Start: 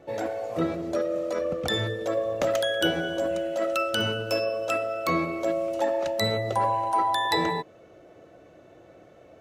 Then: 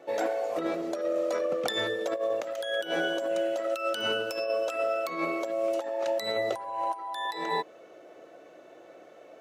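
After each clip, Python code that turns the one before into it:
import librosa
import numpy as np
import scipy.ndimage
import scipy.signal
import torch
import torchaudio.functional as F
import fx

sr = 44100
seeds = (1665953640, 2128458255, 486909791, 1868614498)

y = scipy.signal.sosfilt(scipy.signal.butter(2, 350.0, 'highpass', fs=sr, output='sos'), x)
y = fx.over_compress(y, sr, threshold_db=-29.0, ratio=-0.5)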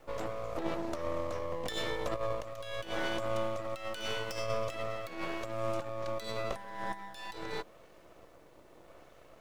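y = fx.rotary(x, sr, hz=0.85)
y = np.maximum(y, 0.0)
y = fx.dmg_noise_colour(y, sr, seeds[0], colour='pink', level_db=-70.0)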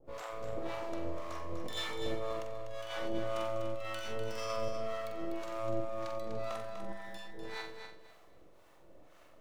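y = fx.room_flutter(x, sr, wall_m=7.7, rt60_s=0.52)
y = fx.harmonic_tremolo(y, sr, hz=1.9, depth_pct=100, crossover_hz=640.0)
y = fx.echo_feedback(y, sr, ms=247, feedback_pct=22, wet_db=-7.5)
y = y * 10.0 ** (-1.5 / 20.0)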